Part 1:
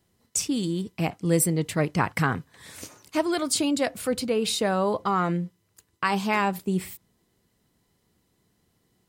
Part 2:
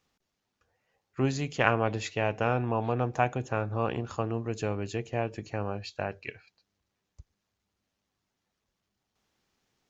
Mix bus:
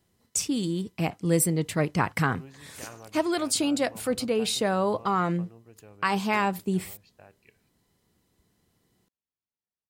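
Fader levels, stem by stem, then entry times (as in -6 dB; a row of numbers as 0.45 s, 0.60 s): -1.0 dB, -20.0 dB; 0.00 s, 1.20 s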